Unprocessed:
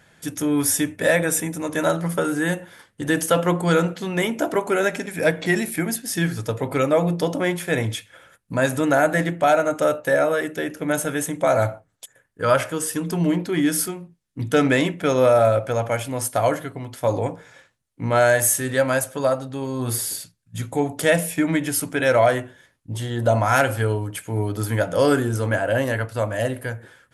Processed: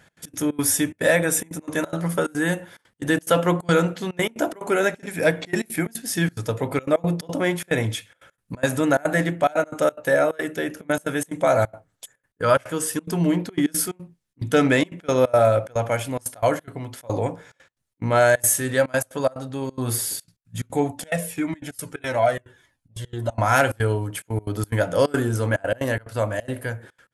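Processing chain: trance gate "x.x.xx.xxxx.xxxx" 179 bpm -24 dB; 20.91–23.38 s: Shepard-style flanger falling 1.7 Hz

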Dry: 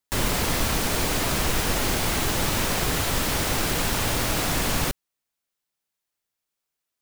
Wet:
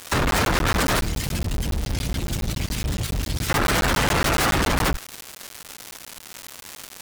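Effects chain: saturation -20 dBFS, distortion -15 dB; 0.99–3.50 s: amplifier tone stack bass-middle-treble 6-0-2; spectral gate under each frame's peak -20 dB strong; frequency shift +23 Hz; crackle 480 per s -40 dBFS; fuzz box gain 47 dB, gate -48 dBFS; dynamic bell 1.4 kHz, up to +5 dB, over -30 dBFS, Q 1.3; crackling interface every 0.14 s, samples 512, zero, from 0.31 s; trim -7 dB

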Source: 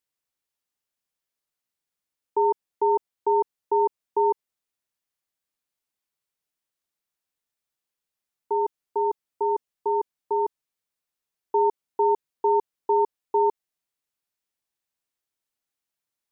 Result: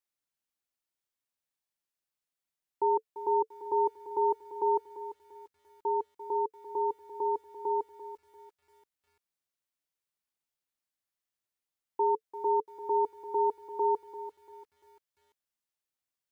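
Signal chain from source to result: reverse the whole clip; band-stop 440 Hz, Q 12; bit-crushed delay 343 ms, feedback 35%, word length 9-bit, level -13.5 dB; trim -5 dB

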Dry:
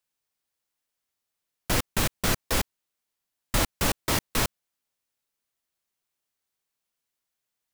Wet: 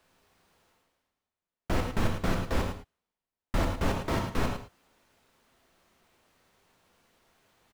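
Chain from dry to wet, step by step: low-pass 1.1 kHz 6 dB/octave; reverse; upward compressor, threshold -45 dBFS; reverse; delay 107 ms -10 dB; reverberation, pre-delay 3 ms, DRR 4.5 dB; trim -1.5 dB

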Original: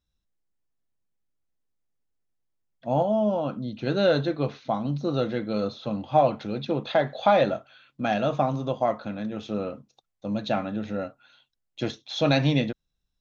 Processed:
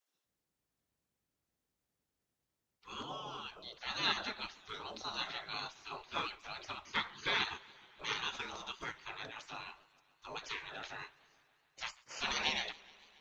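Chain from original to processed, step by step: spectral gate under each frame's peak -25 dB weak; modulated delay 141 ms, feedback 75%, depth 149 cents, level -23.5 dB; trim +4 dB

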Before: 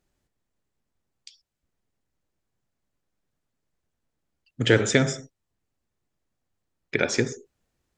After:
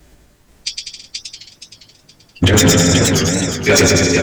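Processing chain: short-time spectra conjugated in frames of 38 ms; bass shelf 200 Hz +3 dB; compressor with a negative ratio -29 dBFS, ratio -1; time stretch by phase-locked vocoder 0.53×; bouncing-ball echo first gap 110 ms, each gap 0.8×, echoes 5; valve stage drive 25 dB, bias 0.25; wavefolder -26.5 dBFS; doubling 19 ms -12.5 dB; loudness maximiser +31 dB; modulated delay 474 ms, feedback 33%, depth 165 cents, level -4 dB; trim -3.5 dB

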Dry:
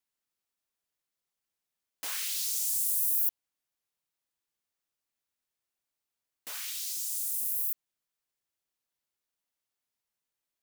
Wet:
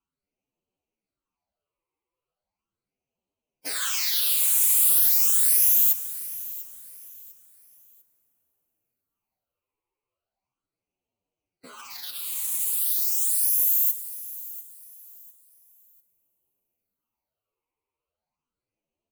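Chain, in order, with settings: local Wiener filter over 25 samples; bass shelf 380 Hz -6 dB; time stretch by phase-locked vocoder 1.8×; sine folder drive 9 dB, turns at -15.5 dBFS; phase shifter stages 8, 0.38 Hz, lowest notch 190–1600 Hz; on a send: feedback delay 697 ms, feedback 31%, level -17 dB; on the sum: plate-style reverb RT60 4.8 s, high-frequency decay 0.65×, DRR 12.5 dB; trim +4 dB

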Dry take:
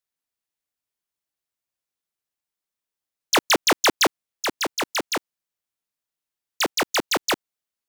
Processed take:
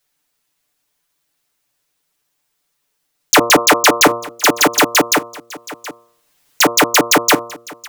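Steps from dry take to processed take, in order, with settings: block-companded coder 3-bit; de-hum 117.1 Hz, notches 12; 3.58–4.01 s: bass shelf 210 Hz -12 dB; comb 6.8 ms, depth 98%; dynamic bell 4.2 kHz, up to -7 dB, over -32 dBFS, Q 0.86; in parallel at +1 dB: compressor with a negative ratio -24 dBFS, ratio -1; on the sum: saturation -5.5 dBFS, distortion -26 dB; on a send: delay 724 ms -21.5 dB; 5.13–6.61 s: on the sum: three bands compressed up and down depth 40%; trim +6.5 dB

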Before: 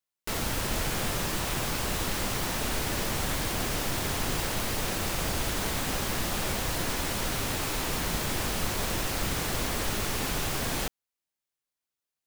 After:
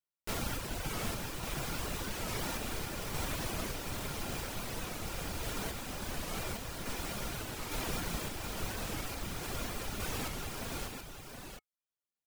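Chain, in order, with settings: small resonant body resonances 1.4/2.4 kHz, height 9 dB, ringing for 90 ms; in parallel at -11 dB: sample-and-hold 19×; on the sum: reverb removal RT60 0.77 s; random-step tremolo 3.5 Hz; delay 720 ms -6.5 dB; warped record 45 rpm, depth 160 cents; trim -5.5 dB

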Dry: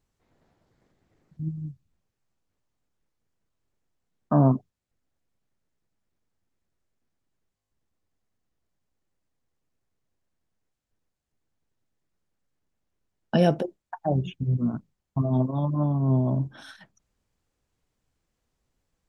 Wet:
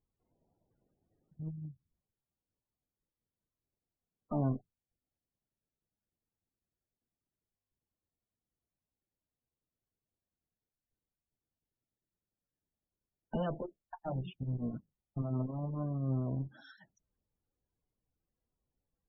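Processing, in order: one-sided clip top -30 dBFS; loudest bins only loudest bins 32; trim -9 dB

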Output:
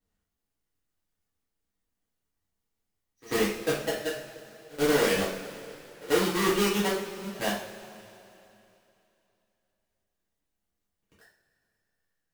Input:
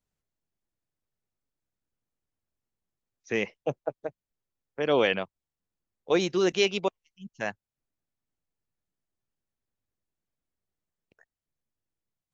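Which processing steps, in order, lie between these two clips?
square wave that keeps the level; compression, threshold -22 dBFS, peak gain reduction 7.5 dB; on a send: reverse echo 92 ms -22.5 dB; on the sum: two-slope reverb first 0.45 s, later 3 s, from -17 dB, DRR -9 dB; trim -8 dB

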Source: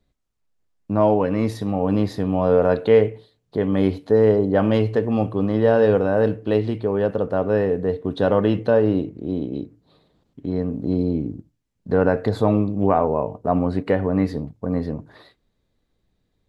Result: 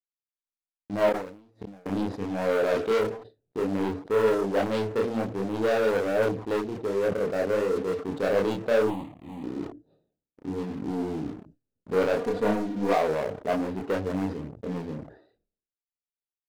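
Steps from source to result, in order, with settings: local Wiener filter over 41 samples; waveshaping leveller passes 3; 8.87–9.44 s: static phaser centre 1.5 kHz, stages 6; gate with hold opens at -20 dBFS; tone controls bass -11 dB, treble +5 dB; 1.09–1.86 s: inverted gate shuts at -12 dBFS, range -30 dB; 12.17–12.95 s: comb 4.2 ms, depth 73%; chorus voices 2, 1.2 Hz, delay 29 ms, depth 3.5 ms; decay stretcher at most 100 dB/s; trim -8.5 dB

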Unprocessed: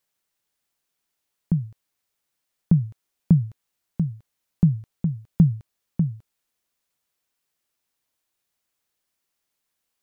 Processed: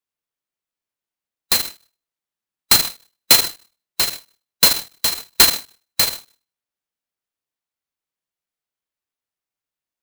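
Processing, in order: split-band scrambler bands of 4 kHz; gate -36 dBFS, range -14 dB; Schroeder reverb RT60 0.38 s, combs from 26 ms, DRR 13 dB; sampling jitter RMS 0.042 ms; trim +4 dB

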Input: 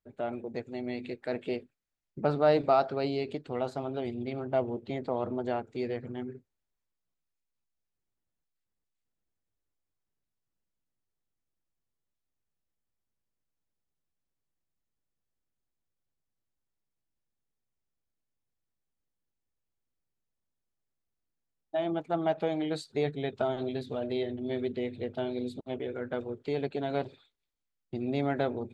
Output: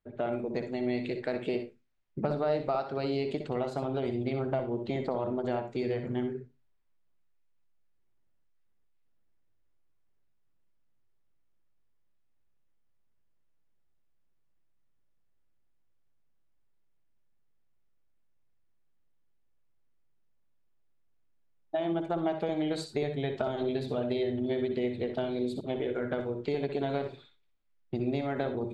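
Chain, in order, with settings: level-controlled noise filter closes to 2.9 kHz, open at -31 dBFS; compression 6:1, threshold -33 dBFS, peak gain reduction 13.5 dB; on a send: reverberation RT60 0.20 s, pre-delay 60 ms, DRR 7 dB; on the sum: trim +5 dB

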